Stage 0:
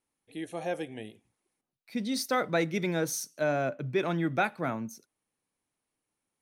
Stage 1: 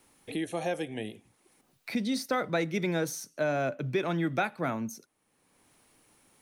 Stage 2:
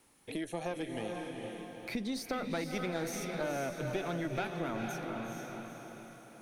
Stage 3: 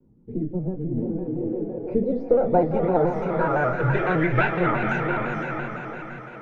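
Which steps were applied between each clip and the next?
multiband upward and downward compressor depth 70%
tube saturation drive 21 dB, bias 0.7; feedback delay with all-pass diffusion 460 ms, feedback 48%, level −5 dB; downward compressor 2 to 1, threshold −37 dBFS, peak gain reduction 6.5 dB; level +1.5 dB
low-pass filter sweep 230 Hz → 1,900 Hz, 0:00.86–0:04.24; convolution reverb RT60 0.25 s, pre-delay 4 ms, DRR 0.5 dB; pitch modulation by a square or saw wave square 5.9 Hz, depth 100 cents; level +8 dB

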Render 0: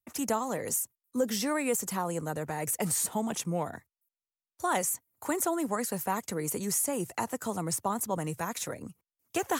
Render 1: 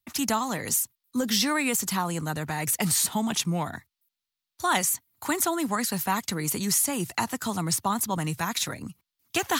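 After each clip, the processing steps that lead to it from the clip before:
octave-band graphic EQ 500/4,000/8,000 Hz −11/+8/−4 dB
level +7 dB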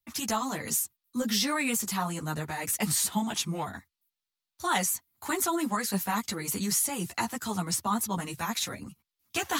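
string-ensemble chorus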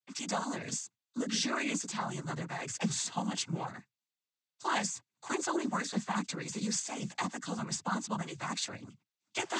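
cochlear-implant simulation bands 16
level −4 dB

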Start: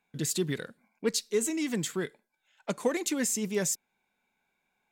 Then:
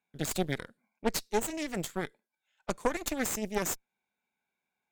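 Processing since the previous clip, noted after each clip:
high-pass filter 57 Hz
harmonic generator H 4 −8 dB, 7 −24 dB, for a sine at −14.5 dBFS
level −3.5 dB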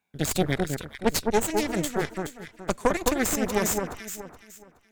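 parametric band 79 Hz +8 dB 0.77 octaves
delay that swaps between a low-pass and a high-pass 211 ms, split 1,600 Hz, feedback 52%, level −3.5 dB
level +6 dB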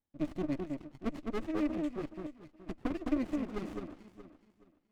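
formant filter u
windowed peak hold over 33 samples
level +2.5 dB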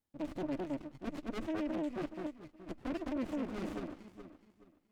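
brickwall limiter −30.5 dBFS, peak gain reduction 11 dB
tube saturation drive 36 dB, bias 0.7
level +5.5 dB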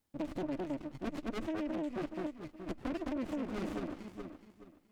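downward compressor 3 to 1, threshold −42 dBFS, peak gain reduction 7.5 dB
level +6.5 dB

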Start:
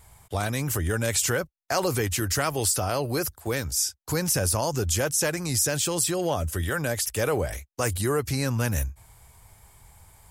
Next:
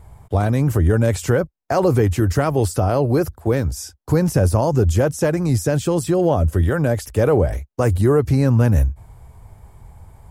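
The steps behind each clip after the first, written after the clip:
tilt shelving filter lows +10 dB, about 1,400 Hz
level +2 dB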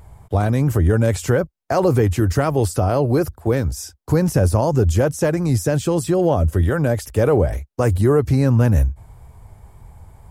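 tape wow and flutter 18 cents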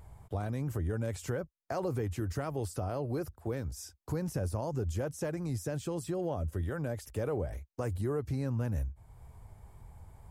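downward compressor 1.5 to 1, threshold −38 dBFS, peak gain reduction 10 dB
level −8.5 dB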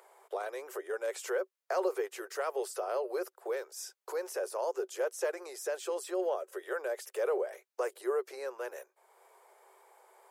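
Chebyshev high-pass with heavy ripple 370 Hz, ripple 3 dB
level +5.5 dB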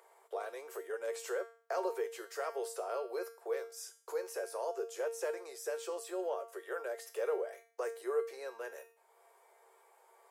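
tuned comb filter 230 Hz, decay 0.45 s, harmonics all, mix 80%
level +7.5 dB

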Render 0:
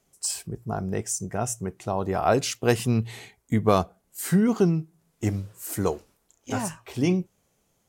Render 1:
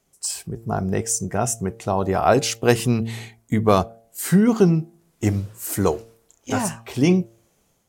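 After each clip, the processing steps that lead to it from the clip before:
hum removal 114 Hz, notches 7
automatic gain control gain up to 5 dB
level +1 dB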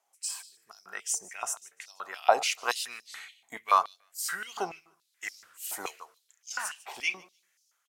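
repeating echo 149 ms, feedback 19%, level −19.5 dB
high-pass on a step sequencer 7 Hz 820–5,100 Hz
level −8.5 dB

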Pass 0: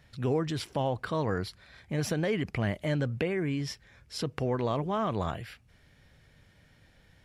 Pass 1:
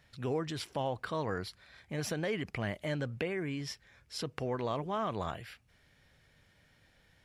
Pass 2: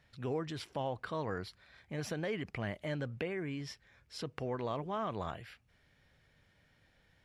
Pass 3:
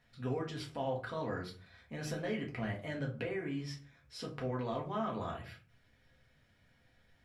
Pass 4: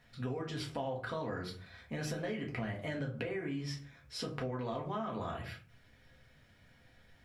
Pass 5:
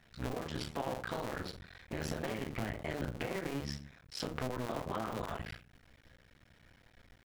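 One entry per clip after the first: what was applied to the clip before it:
low-shelf EQ 390 Hz −5.5 dB; level −2.5 dB
high-shelf EQ 5,900 Hz −7 dB; level −2.5 dB
convolution reverb RT60 0.40 s, pre-delay 4 ms, DRR −2 dB; level −4.5 dB
downward compressor, threshold −40 dBFS, peak gain reduction 9.5 dB; level +5.5 dB
sub-harmonics by changed cycles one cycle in 2, muted; level +2.5 dB

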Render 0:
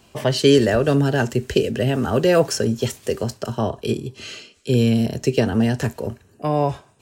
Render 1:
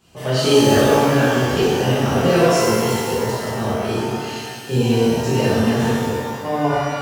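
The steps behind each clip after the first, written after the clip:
mains-hum notches 60/120 Hz
reverb with rising layers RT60 1.8 s, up +12 semitones, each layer −8 dB, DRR −11 dB
level −9 dB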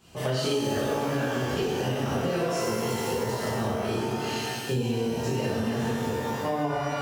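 downward compressor 6 to 1, threshold −25 dBFS, peak gain reduction 15.5 dB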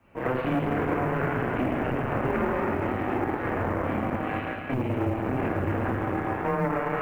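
harmonic generator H 6 −11 dB, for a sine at −14.5 dBFS
single-sideband voice off tune −130 Hz 200–2,400 Hz
log-companded quantiser 8 bits

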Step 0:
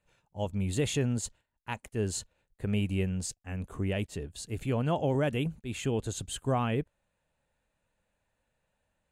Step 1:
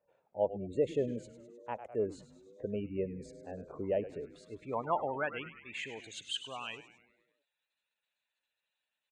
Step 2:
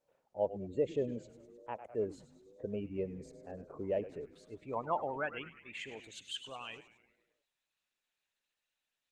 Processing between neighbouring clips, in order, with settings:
gate on every frequency bin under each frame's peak −25 dB strong; echo with shifted repeats 102 ms, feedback 58%, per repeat −120 Hz, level −12 dB; band-pass filter sweep 570 Hz → 4,000 Hz, 0:04.03–0:06.85; level +6.5 dB
level −2 dB; Opus 16 kbit/s 48,000 Hz

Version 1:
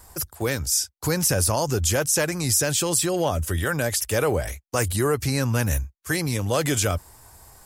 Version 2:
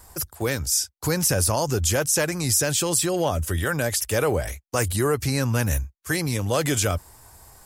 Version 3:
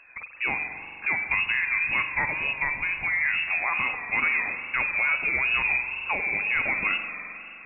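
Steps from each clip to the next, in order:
no processing that can be heard
voice inversion scrambler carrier 2,600 Hz; spring reverb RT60 2.9 s, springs 43 ms, chirp 30 ms, DRR 6 dB; tape wow and flutter 88 cents; level −3 dB

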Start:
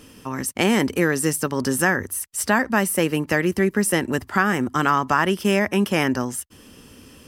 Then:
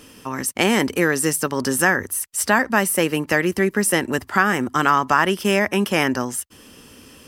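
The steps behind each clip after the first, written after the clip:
low-shelf EQ 280 Hz −6 dB
level +3 dB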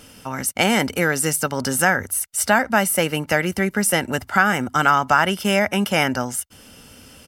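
comb filter 1.4 ms, depth 49%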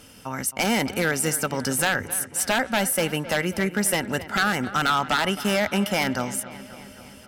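wave folding −10.5 dBFS
harmonic generator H 2 −40 dB, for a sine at −10.5 dBFS
delay with a low-pass on its return 266 ms, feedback 63%, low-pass 3,300 Hz, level −15 dB
level −3 dB

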